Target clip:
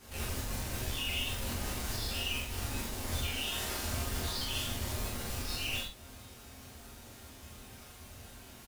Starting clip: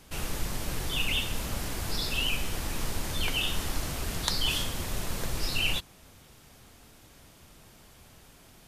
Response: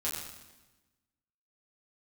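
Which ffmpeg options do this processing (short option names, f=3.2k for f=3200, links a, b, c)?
-filter_complex "[0:a]asettb=1/sr,asplit=3[a][b][c];[a]atrim=end=3.364[d];[b]atrim=start=3.36:end=3.85,asetpts=PTS-STARTPTS,afade=t=in:d=0.004:c=qsin,afade=t=out:st=0.486:d=0.004:c=qsin,lowshelf=f=160:g=-12[e];[c]atrim=start=3.846[f];[d][e]acrossfade=d=0.004:c1=hsin:c2=qsin[g];[g][f]acrossfade=d=0.004:c1=qsin:c2=hsin,acompressor=threshold=-35dB:ratio=3,acrusher=bits=2:mode=log:mix=0:aa=0.000001,aeval=exprs='(tanh(39.8*val(0)+0.5)-tanh(0.5))/39.8':c=same,asplit=2[h][i];[i]adelay=45,volume=-4dB[j];[h][j]amix=inputs=2:normalize=0[k];[1:a]atrim=start_sample=2205,atrim=end_sample=4410[l];[k][l]afir=irnorm=-1:irlink=0"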